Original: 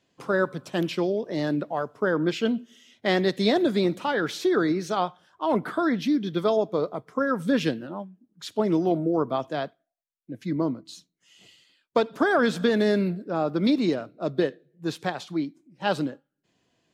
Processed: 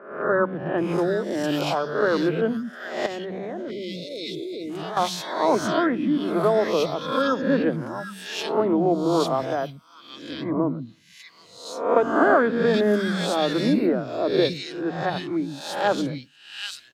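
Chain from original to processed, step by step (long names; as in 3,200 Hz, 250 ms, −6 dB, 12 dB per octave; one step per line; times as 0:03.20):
peak hold with a rise ahead of every peak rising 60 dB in 0.67 s
three-band delay without the direct sound mids, lows, highs 110/780 ms, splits 220/2,000 Hz
0:03.06–0:04.97: output level in coarse steps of 17 dB
0:03.71–0:04.70: time-frequency box erased 670–2,000 Hz
level +2.5 dB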